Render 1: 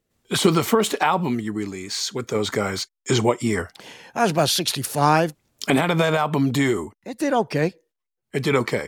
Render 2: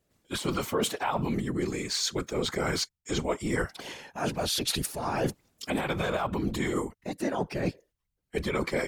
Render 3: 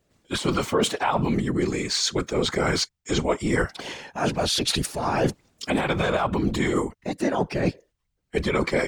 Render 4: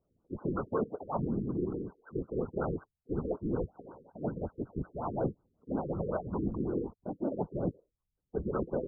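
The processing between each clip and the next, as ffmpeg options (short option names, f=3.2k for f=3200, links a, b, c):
-af "areverse,acompressor=threshold=-26dB:ratio=20,areverse,afftfilt=real='hypot(re,im)*cos(2*PI*random(0))':imag='hypot(re,im)*sin(2*PI*random(1))':win_size=512:overlap=0.75,volume=7dB"
-af "equalizer=f=13k:w=1.4:g=-13,volume=6dB"
-af "afftfilt=real='re*lt(b*sr/1024,490*pow(1600/490,0.5+0.5*sin(2*PI*5.4*pts/sr)))':imag='im*lt(b*sr/1024,490*pow(1600/490,0.5+0.5*sin(2*PI*5.4*pts/sr)))':win_size=1024:overlap=0.75,volume=-9dB"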